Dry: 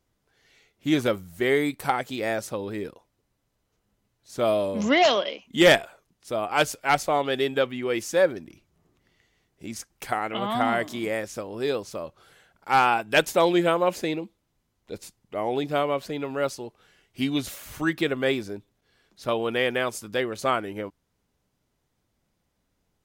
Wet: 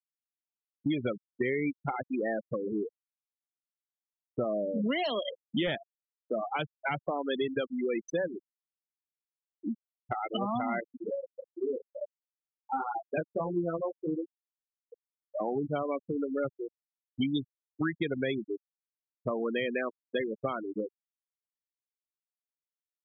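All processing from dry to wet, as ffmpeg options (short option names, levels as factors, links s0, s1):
-filter_complex "[0:a]asettb=1/sr,asplit=3[s0][s1][s2];[s0]atrim=end=10.804[s3];[s1]atrim=start=10.8:end=15.4,asetpts=PTS-STARTPTS,afade=t=in:d=0.004:c=qsin,afade=t=out:st=4.596:d=0.004:c=qsin,lowpass=f=1000:p=1,tremolo=f=18:d=0.34,flanger=delay=17.5:depth=2.2:speed=1.4[s4];[s2]atrim=start=15.396[s5];[s3][s4]acrossfade=d=0.004:c1=hsin:c2=qsin[s6];[s6][s5]acrossfade=d=0.004:c1=qsin:c2=hsin,afftfilt=real='re*gte(hypot(re,im),0.112)':imag='im*gte(hypot(re,im),0.112)':win_size=1024:overlap=0.75,alimiter=limit=0.15:level=0:latency=1:release=132,acrossover=split=230|3000[s7][s8][s9];[s7]acompressor=threshold=0.00708:ratio=4[s10];[s8]acompressor=threshold=0.0112:ratio=4[s11];[s9]acompressor=threshold=0.00447:ratio=4[s12];[s10][s11][s12]amix=inputs=3:normalize=0,volume=2"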